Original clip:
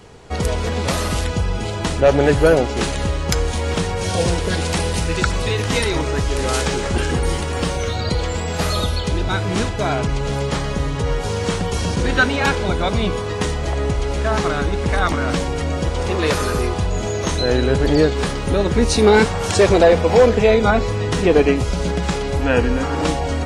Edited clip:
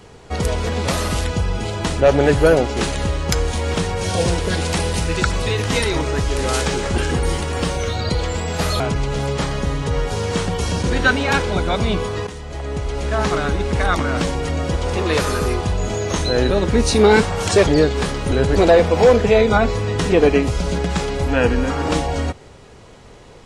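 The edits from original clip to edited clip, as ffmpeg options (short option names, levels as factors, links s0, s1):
-filter_complex "[0:a]asplit=7[s0][s1][s2][s3][s4][s5][s6];[s0]atrim=end=8.802[s7];[s1]atrim=start=9.928:end=13.4,asetpts=PTS-STARTPTS,afade=t=out:st=3.468:d=0.004:c=hsin:silence=0.199526[s8];[s2]atrim=start=13.4:end=17.632,asetpts=PTS-STARTPTS,afade=t=in:d=0.98:silence=0.199526[s9];[s3]atrim=start=18.528:end=19.702[s10];[s4]atrim=start=17.878:end=18.532[s11];[s5]atrim=start=17.628:end=17.882[s12];[s6]atrim=start=19.698[s13];[s8][s9]concat=n=2:v=0:a=1[s14];[s7][s14]acrossfade=d=0.004:c1=hsin:c2=hsin[s15];[s15][s10]acrossfade=d=0.004:c1=hsin:c2=hsin[s16];[s16][s11]acrossfade=d=0.004:c1=hsin:c2=hsin[s17];[s17][s12]acrossfade=d=0.004:c1=hsin:c2=hsin[s18];[s18][s13]acrossfade=d=0.004:c1=hsin:c2=hsin"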